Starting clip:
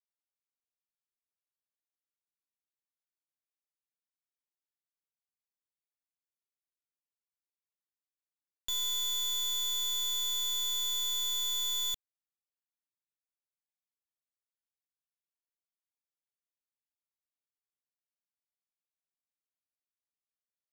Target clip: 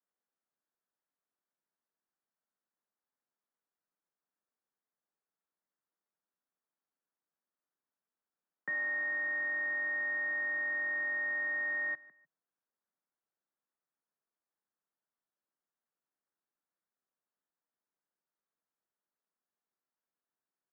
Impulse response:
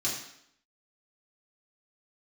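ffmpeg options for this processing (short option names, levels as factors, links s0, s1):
-af "highpass=f=160:t=q:w=0.5412,highpass=f=160:t=q:w=1.307,lowpass=f=3300:t=q:w=0.5176,lowpass=f=3300:t=q:w=0.7071,lowpass=f=3300:t=q:w=1.932,afreqshift=140,aecho=1:1:152|304:0.0794|0.023,asetrate=22696,aresample=44100,atempo=1.94306,volume=1.78"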